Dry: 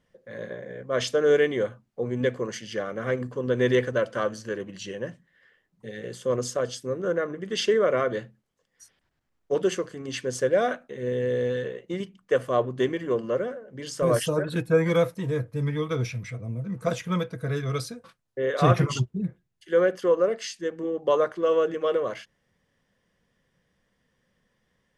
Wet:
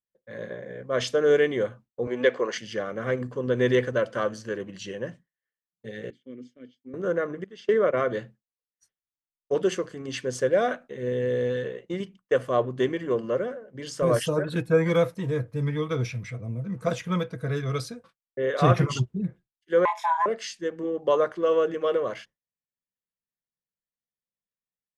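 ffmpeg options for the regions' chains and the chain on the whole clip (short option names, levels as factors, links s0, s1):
-filter_complex "[0:a]asettb=1/sr,asplit=3[s0][s1][s2];[s0]atrim=end=2.074[s3];[s1]atrim=start=2.07:end=2.58,asetpts=PTS-STARTPTS,afade=t=in:d=0.004:c=qsin,afade=t=out:st=0.506:d=0.004:c=qsin,highpass=450,lowpass=5000,acontrast=74[s4];[s2]atrim=start=2.576[s5];[s3][s4]acrossfade=d=0.004:c1=hsin:c2=qsin[s6];[s6][s5]acrossfade=d=0.004:c1=qsin:c2=hsin,asettb=1/sr,asplit=3[s7][s8][s9];[s7]atrim=end=6.104[s10];[s8]atrim=start=6.1:end=6.94,asetpts=PTS-STARTPTS,afade=t=in:d=0.004:c=qsin,afade=t=out:st=0.836:d=0.004:c=qsin,asplit=3[s11][s12][s13];[s11]bandpass=f=270:t=q:w=8,volume=1[s14];[s12]bandpass=f=2290:t=q:w=8,volume=0.501[s15];[s13]bandpass=f=3010:t=q:w=8,volume=0.355[s16];[s14][s15][s16]amix=inputs=3:normalize=0,highshelf=f=2900:g=-6.5[s17];[s9]atrim=start=6.936[s18];[s10][s17]acrossfade=d=0.004:c1=hsin:c2=qsin[s19];[s19][s18]acrossfade=d=0.004:c1=qsin:c2=hsin,asettb=1/sr,asplit=3[s20][s21][s22];[s20]atrim=end=7.444[s23];[s21]atrim=start=7.44:end=7.97,asetpts=PTS-STARTPTS,afade=t=in:d=0.004:c=qsin,afade=t=out:st=0.526:d=0.004:c=qsin,agate=range=0.178:threshold=0.0631:ratio=16:release=100:detection=peak,highshelf=f=6100:g=-9[s24];[s22]atrim=start=7.966[s25];[s23][s24]acrossfade=d=0.004:c1=hsin:c2=qsin[s26];[s26][s25]acrossfade=d=0.004:c1=qsin:c2=hsin,asettb=1/sr,asplit=3[s27][s28][s29];[s27]atrim=end=19.854[s30];[s28]atrim=start=19.85:end=20.26,asetpts=PTS-STARTPTS,afade=t=in:d=0.004:c=qsin,afade=t=out:st=0.406:d=0.004:c=qsin,asplit=2[s31][s32];[s32]adelay=24,volume=0.708[s33];[s31][s33]amix=inputs=2:normalize=0,atrim=end_sample=18081,acompressor=threshold=0.1:ratio=4:attack=3.2:release=140:knee=1:detection=peak,afreqshift=480[s34];[s29]atrim=start=20.256[s35];[s30][s34]acrossfade=d=0.004:c1=hsin:c2=qsin[s36];[s36][s35]acrossfade=d=0.004:c1=qsin:c2=hsin,agate=range=0.0224:threshold=0.00891:ratio=3:detection=peak,highshelf=f=10000:g=-7"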